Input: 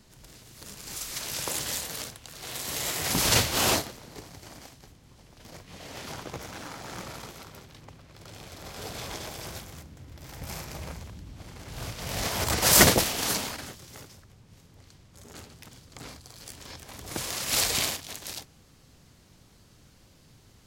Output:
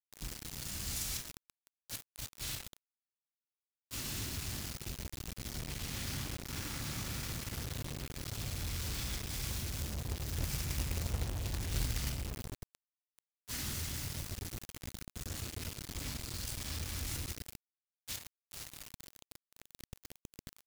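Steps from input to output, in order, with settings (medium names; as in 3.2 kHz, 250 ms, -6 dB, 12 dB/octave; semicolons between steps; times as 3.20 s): echo whose repeats swap between lows and highs 122 ms, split 890 Hz, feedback 75%, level -11.5 dB; compression 2:1, threshold -38 dBFS, peak gain reduction 14 dB; inverted gate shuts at -25 dBFS, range -31 dB; bit crusher 11-bit; bass shelf 140 Hz +4.5 dB; on a send at -1 dB: reverberation RT60 1.4 s, pre-delay 3 ms; on the sum: crackle 43 per s -49 dBFS; amplifier tone stack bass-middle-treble 6-0-2; companded quantiser 4-bit; trim +13 dB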